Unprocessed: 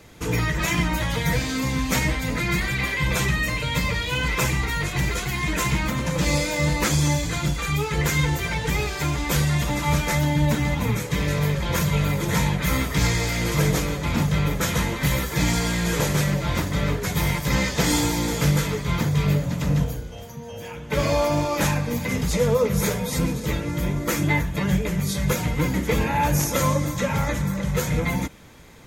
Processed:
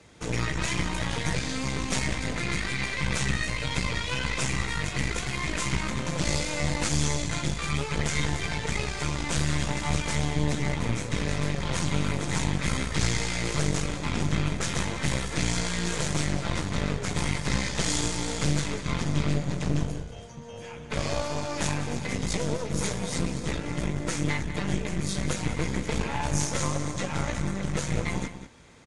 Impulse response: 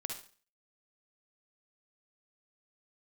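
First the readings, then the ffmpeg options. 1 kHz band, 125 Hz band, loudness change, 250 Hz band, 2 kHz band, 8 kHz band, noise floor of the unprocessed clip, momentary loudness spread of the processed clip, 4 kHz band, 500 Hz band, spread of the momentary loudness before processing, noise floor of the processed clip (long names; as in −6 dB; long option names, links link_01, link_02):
−6.5 dB, −6.5 dB, −6.0 dB, −6.0 dB, −5.5 dB, −3.0 dB, −35 dBFS, 3 LU, −3.5 dB, −7.0 dB, 4 LU, −40 dBFS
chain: -filter_complex "[0:a]highpass=frequency=44:poles=1,acrossover=split=160|3000[link_01][link_02][link_03];[link_02]acompressor=threshold=-26dB:ratio=6[link_04];[link_01][link_04][link_03]amix=inputs=3:normalize=0,aeval=exprs='0.282*(cos(1*acos(clip(val(0)/0.282,-1,1)))-cos(1*PI/2))+0.0891*(cos(4*acos(clip(val(0)/0.282,-1,1)))-cos(4*PI/2))':channel_layout=same,asplit=2[link_05][link_06];[link_06]adelay=192.4,volume=-11dB,highshelf=frequency=4000:gain=-4.33[link_07];[link_05][link_07]amix=inputs=2:normalize=0,volume=-5.5dB" -ar 22050 -c:a libvorbis -b:a 48k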